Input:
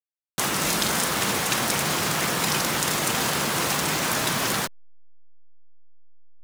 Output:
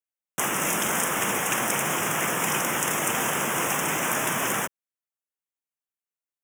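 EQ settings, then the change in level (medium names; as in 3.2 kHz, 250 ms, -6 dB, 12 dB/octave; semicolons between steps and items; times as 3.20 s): high-pass 210 Hz 6 dB/octave; Butterworth band-stop 4.3 kHz, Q 1.5; 0.0 dB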